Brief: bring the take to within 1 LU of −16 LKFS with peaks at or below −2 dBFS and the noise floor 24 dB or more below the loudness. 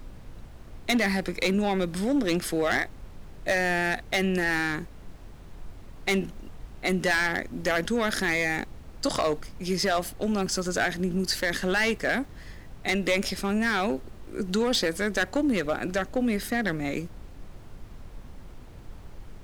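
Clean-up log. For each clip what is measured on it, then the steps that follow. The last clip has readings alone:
share of clipped samples 1.2%; peaks flattened at −18.5 dBFS; background noise floor −45 dBFS; target noise floor −51 dBFS; integrated loudness −27.0 LKFS; sample peak −18.5 dBFS; target loudness −16.0 LKFS
→ clipped peaks rebuilt −18.5 dBFS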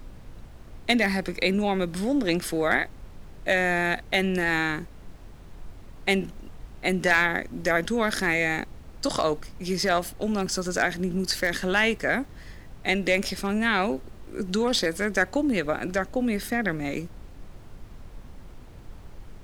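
share of clipped samples 0.0%; background noise floor −45 dBFS; target noise floor −50 dBFS
→ noise reduction from a noise print 6 dB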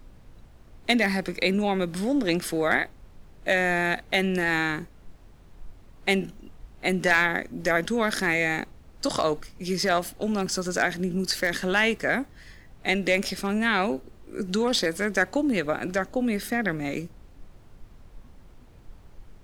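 background noise floor −51 dBFS; integrated loudness −25.5 LKFS; sample peak −9.5 dBFS; target loudness −16.0 LKFS
→ level +9.5 dB
brickwall limiter −2 dBFS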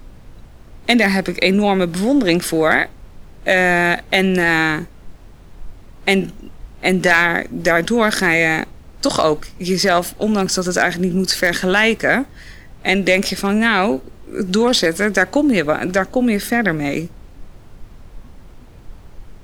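integrated loudness −16.5 LKFS; sample peak −2.0 dBFS; background noise floor −42 dBFS

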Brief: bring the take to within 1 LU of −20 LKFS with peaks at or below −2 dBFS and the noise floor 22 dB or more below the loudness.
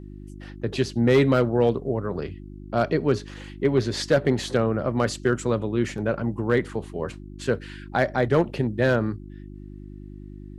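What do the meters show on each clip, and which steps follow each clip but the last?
share of clipped samples 0.3%; peaks flattened at −11.0 dBFS; mains hum 50 Hz; hum harmonics up to 350 Hz; level of the hum −38 dBFS; integrated loudness −24.5 LKFS; sample peak −11.0 dBFS; target loudness −20.0 LKFS
→ clipped peaks rebuilt −11 dBFS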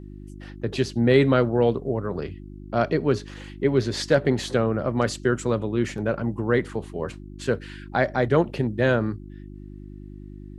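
share of clipped samples 0.0%; mains hum 50 Hz; hum harmonics up to 350 Hz; level of the hum −38 dBFS
→ hum removal 50 Hz, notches 7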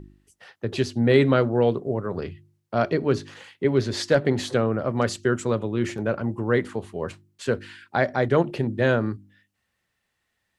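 mains hum none found; integrated loudness −24.5 LKFS; sample peak −4.5 dBFS; target loudness −20.0 LKFS
→ level +4.5 dB
brickwall limiter −2 dBFS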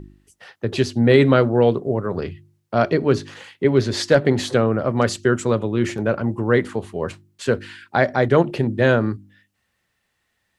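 integrated loudness −20.0 LKFS; sample peak −2.0 dBFS; background noise floor −72 dBFS

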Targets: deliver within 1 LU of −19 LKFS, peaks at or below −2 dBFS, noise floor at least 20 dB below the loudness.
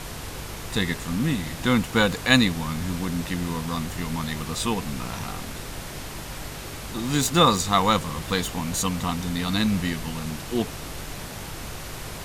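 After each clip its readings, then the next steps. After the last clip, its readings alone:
mains hum 50 Hz; hum harmonics up to 150 Hz; level of the hum −41 dBFS; background noise floor −36 dBFS; target noise floor −46 dBFS; integrated loudness −25.5 LKFS; sample peak −3.5 dBFS; target loudness −19.0 LKFS
→ hum removal 50 Hz, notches 3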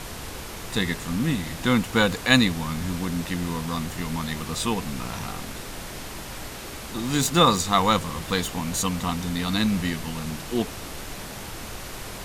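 mains hum none found; background noise floor −37 dBFS; target noise floor −46 dBFS
→ noise reduction from a noise print 9 dB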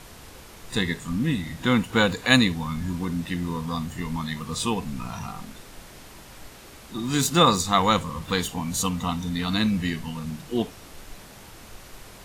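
background noise floor −46 dBFS; integrated loudness −25.0 LKFS; sample peak −4.0 dBFS; target loudness −19.0 LKFS
→ level +6 dB
brickwall limiter −2 dBFS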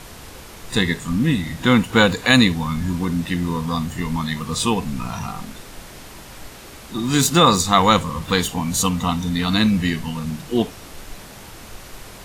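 integrated loudness −19.5 LKFS; sample peak −2.0 dBFS; background noise floor −40 dBFS

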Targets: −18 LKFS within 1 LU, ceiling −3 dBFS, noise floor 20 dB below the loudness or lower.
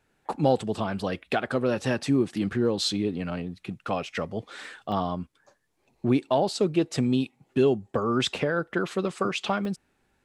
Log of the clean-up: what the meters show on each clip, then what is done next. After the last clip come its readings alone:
number of dropouts 3; longest dropout 1.6 ms; integrated loudness −27.5 LKFS; sample peak −10.0 dBFS; target loudness −18.0 LKFS
→ repair the gap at 0:00.99/0:04.92/0:09.65, 1.6 ms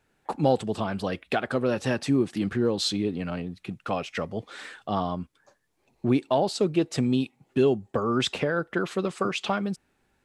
number of dropouts 0; integrated loudness −27.5 LKFS; sample peak −10.0 dBFS; target loudness −18.0 LKFS
→ level +9.5 dB
brickwall limiter −3 dBFS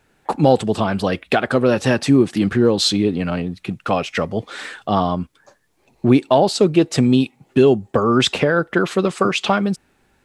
integrated loudness −18.0 LKFS; sample peak −3.0 dBFS; background noise floor −61 dBFS

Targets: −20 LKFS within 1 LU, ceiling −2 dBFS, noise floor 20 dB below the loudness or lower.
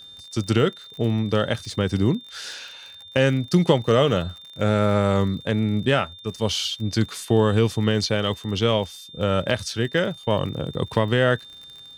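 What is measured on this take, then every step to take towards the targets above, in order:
crackle rate 43 per second; interfering tone 3,600 Hz; level of the tone −41 dBFS; integrated loudness −22.5 LKFS; sample peak −3.5 dBFS; target loudness −20.0 LKFS
→ click removal
notch filter 3,600 Hz, Q 30
level +2.5 dB
brickwall limiter −2 dBFS

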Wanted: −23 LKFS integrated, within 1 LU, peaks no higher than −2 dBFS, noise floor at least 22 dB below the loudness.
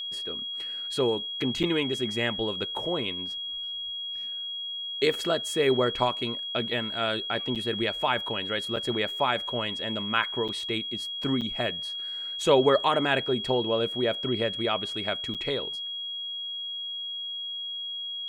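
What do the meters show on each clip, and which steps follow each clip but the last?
number of dropouts 6; longest dropout 6.9 ms; interfering tone 3,300 Hz; level of the tone −32 dBFS; integrated loudness −28.0 LKFS; sample peak −8.0 dBFS; target loudness −23.0 LKFS
→ repair the gap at 0:01.63/0:07.55/0:08.76/0:10.48/0:11.41/0:15.34, 6.9 ms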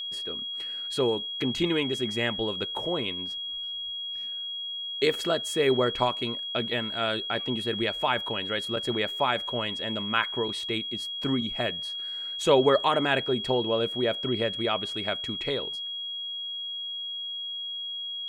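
number of dropouts 0; interfering tone 3,300 Hz; level of the tone −32 dBFS
→ notch filter 3,300 Hz, Q 30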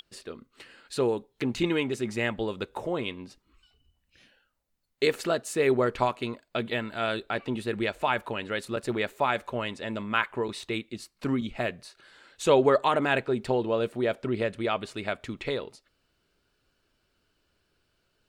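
interfering tone none found; integrated loudness −28.5 LKFS; sample peak −8.0 dBFS; target loudness −23.0 LKFS
→ level +5.5 dB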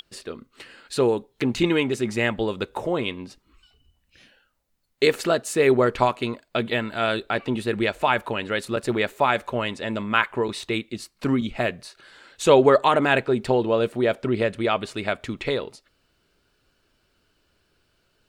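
integrated loudness −23.0 LKFS; sample peak −2.5 dBFS; background noise floor −69 dBFS

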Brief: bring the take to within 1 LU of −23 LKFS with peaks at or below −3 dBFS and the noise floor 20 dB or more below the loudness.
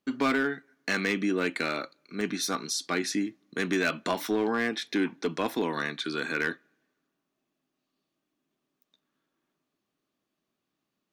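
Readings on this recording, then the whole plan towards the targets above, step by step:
share of clipped samples 0.6%; peaks flattened at −19.5 dBFS; number of dropouts 1; longest dropout 1.9 ms; integrated loudness −29.5 LKFS; sample peak −19.5 dBFS; target loudness −23.0 LKFS
→ clipped peaks rebuilt −19.5 dBFS
repair the gap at 0:02.21, 1.9 ms
level +6.5 dB

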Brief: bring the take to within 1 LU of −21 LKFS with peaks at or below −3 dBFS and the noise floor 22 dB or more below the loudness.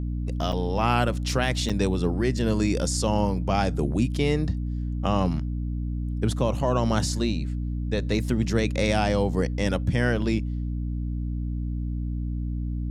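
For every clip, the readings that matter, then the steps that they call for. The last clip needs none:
number of dropouts 2; longest dropout 6.5 ms; mains hum 60 Hz; hum harmonics up to 300 Hz; level of the hum −26 dBFS; integrated loudness −26.0 LKFS; sample peak −8.5 dBFS; target loudness −21.0 LKFS
→ repair the gap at 0:00.52/0:01.69, 6.5 ms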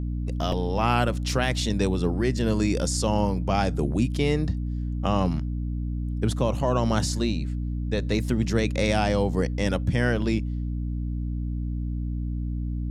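number of dropouts 0; mains hum 60 Hz; hum harmonics up to 300 Hz; level of the hum −26 dBFS
→ mains-hum notches 60/120/180/240/300 Hz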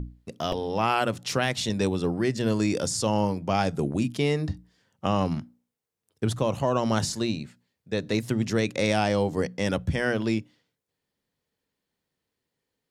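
mains hum none found; integrated loudness −27.0 LKFS; sample peak −9.5 dBFS; target loudness −21.0 LKFS
→ level +6 dB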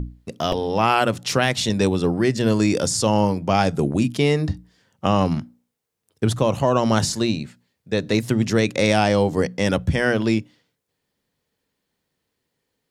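integrated loudness −21.0 LKFS; sample peak −3.5 dBFS; background noise floor −78 dBFS

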